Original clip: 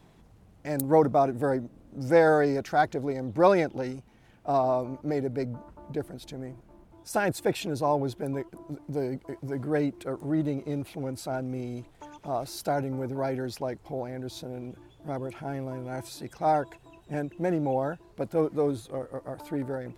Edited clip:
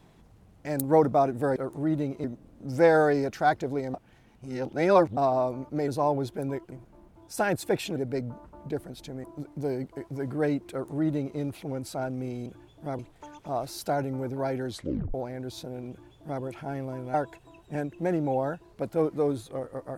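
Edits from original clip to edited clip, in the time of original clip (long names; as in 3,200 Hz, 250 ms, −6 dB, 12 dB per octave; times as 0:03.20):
0:03.26–0:04.49: reverse
0:05.20–0:06.48: swap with 0:07.72–0:08.56
0:10.03–0:10.71: duplicate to 0:01.56
0:13.48: tape stop 0.45 s
0:14.68–0:15.21: duplicate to 0:11.78
0:15.93–0:16.53: remove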